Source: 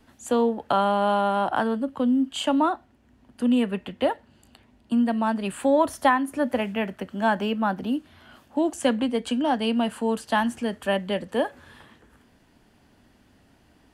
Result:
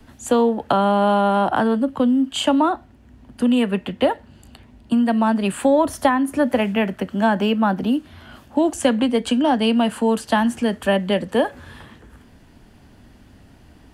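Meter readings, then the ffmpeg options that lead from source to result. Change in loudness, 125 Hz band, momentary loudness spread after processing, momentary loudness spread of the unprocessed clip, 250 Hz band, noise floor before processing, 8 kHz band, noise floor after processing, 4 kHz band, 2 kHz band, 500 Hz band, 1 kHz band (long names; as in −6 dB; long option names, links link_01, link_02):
+5.0 dB, +8.0 dB, 5 LU, 7 LU, +6.0 dB, −60 dBFS, +6.0 dB, −50 dBFS, +5.5 dB, +3.5 dB, +5.0 dB, +3.5 dB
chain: -filter_complex "[0:a]acrossover=split=150|510[link_01][link_02][link_03];[link_01]acompressor=threshold=-51dB:ratio=4[link_04];[link_02]acompressor=threshold=-26dB:ratio=4[link_05];[link_03]acompressor=threshold=-24dB:ratio=4[link_06];[link_04][link_05][link_06]amix=inputs=3:normalize=0,lowshelf=frequency=160:gain=9,volume=6.5dB"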